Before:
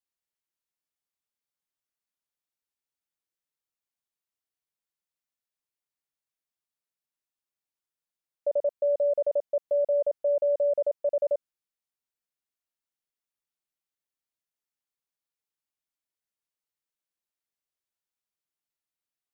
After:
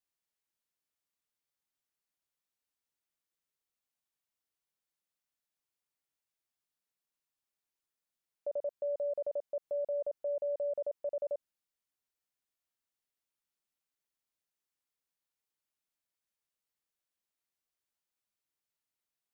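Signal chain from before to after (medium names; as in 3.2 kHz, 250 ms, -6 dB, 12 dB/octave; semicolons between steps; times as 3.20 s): peak limiter -30 dBFS, peak gain reduction 10 dB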